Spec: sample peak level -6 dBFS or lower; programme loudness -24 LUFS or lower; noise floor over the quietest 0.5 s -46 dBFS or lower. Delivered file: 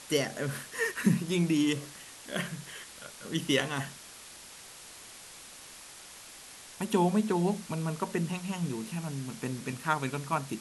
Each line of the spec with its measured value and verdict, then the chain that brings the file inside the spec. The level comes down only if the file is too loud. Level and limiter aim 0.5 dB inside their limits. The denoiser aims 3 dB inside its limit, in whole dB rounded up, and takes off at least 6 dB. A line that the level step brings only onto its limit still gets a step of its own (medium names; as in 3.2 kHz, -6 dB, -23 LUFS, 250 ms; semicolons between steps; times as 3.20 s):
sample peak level -12.0 dBFS: pass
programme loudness -31.5 LUFS: pass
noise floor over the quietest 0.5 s -49 dBFS: pass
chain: none needed